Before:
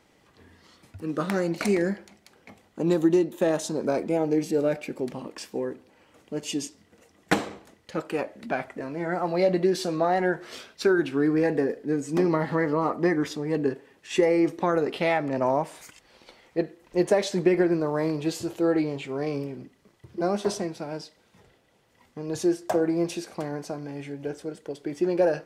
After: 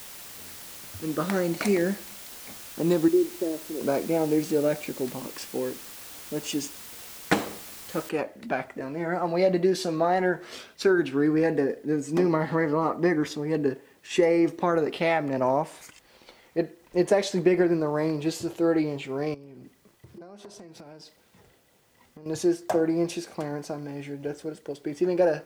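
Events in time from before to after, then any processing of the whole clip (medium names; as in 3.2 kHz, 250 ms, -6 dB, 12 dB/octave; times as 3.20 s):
3.08–3.81 s: band-pass filter 360 Hz, Q 3.5
8.09 s: noise floor step -43 dB -68 dB
19.34–22.26 s: compression 16:1, threshold -41 dBFS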